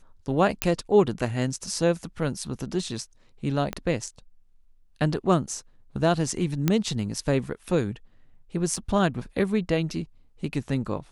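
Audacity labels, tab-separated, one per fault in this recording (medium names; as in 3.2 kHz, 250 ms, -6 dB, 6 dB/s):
0.620000	0.620000	pop -4 dBFS
3.730000	3.730000	pop -15 dBFS
6.680000	6.680000	pop -8 dBFS
8.760000	8.760000	dropout 4.1 ms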